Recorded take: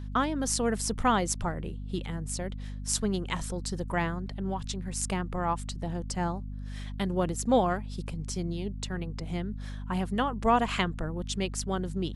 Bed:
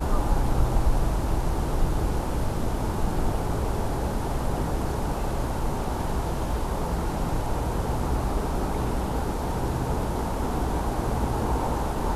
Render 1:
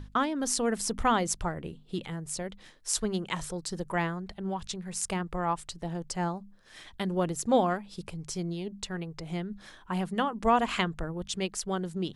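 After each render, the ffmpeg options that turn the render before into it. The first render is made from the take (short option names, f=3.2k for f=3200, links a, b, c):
-af "bandreject=f=50:t=h:w=6,bandreject=f=100:t=h:w=6,bandreject=f=150:t=h:w=6,bandreject=f=200:t=h:w=6,bandreject=f=250:t=h:w=6"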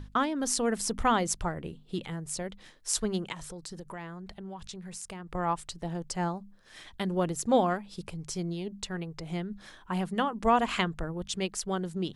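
-filter_complex "[0:a]asettb=1/sr,asplit=3[a][b][c];[a]atrim=end=3.324[d];[b]atrim=start=3.32:end=5.35,asetpts=PTS-STARTPTS,afade=t=in:d=0.004:c=qsin,afade=t=out:st=2.026:d=0.004:c=qsin,acompressor=threshold=-39dB:ratio=4:attack=3.2:release=140:knee=1:detection=peak[e];[c]atrim=start=5.346[f];[d][e]acrossfade=d=0.004:c1=hsin:c2=qsin[g];[g][f]acrossfade=d=0.004:c1=qsin:c2=hsin"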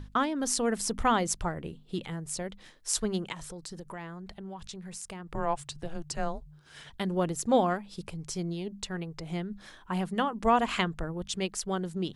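-filter_complex "[0:a]asettb=1/sr,asplit=3[a][b][c];[a]atrim=end=5.354[d];[b]atrim=start=5.35:end=6.9,asetpts=PTS-STARTPTS,afade=t=in:d=0.004:c=qsin,afade=t=out:st=1.546:d=0.004:c=qsin,afreqshift=-160[e];[c]atrim=start=6.896[f];[d][e]acrossfade=d=0.004:c1=hsin:c2=qsin[g];[g][f]acrossfade=d=0.004:c1=qsin:c2=hsin"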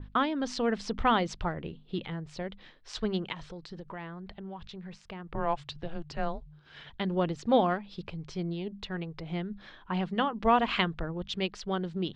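-af "lowpass=f=3.9k:w=0.5412,lowpass=f=3.9k:w=1.3066,adynamicequalizer=threshold=0.00562:dfrequency=2900:dqfactor=0.7:tfrequency=2900:tqfactor=0.7:attack=5:release=100:ratio=0.375:range=3:mode=boostabove:tftype=highshelf"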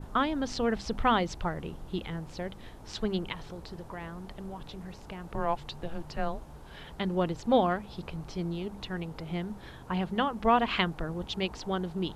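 -filter_complex "[1:a]volume=-21.5dB[a];[0:a][a]amix=inputs=2:normalize=0"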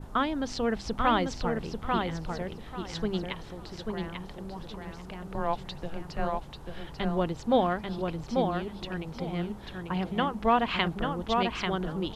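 -filter_complex "[0:a]asplit=2[a][b];[b]adelay=841,lowpass=f=4.9k:p=1,volume=-4dB,asplit=2[c][d];[d]adelay=841,lowpass=f=4.9k:p=1,volume=0.23,asplit=2[e][f];[f]adelay=841,lowpass=f=4.9k:p=1,volume=0.23[g];[a][c][e][g]amix=inputs=4:normalize=0"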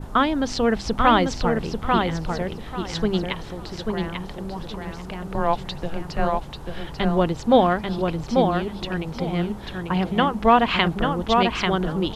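-af "volume=8dB,alimiter=limit=-3dB:level=0:latency=1"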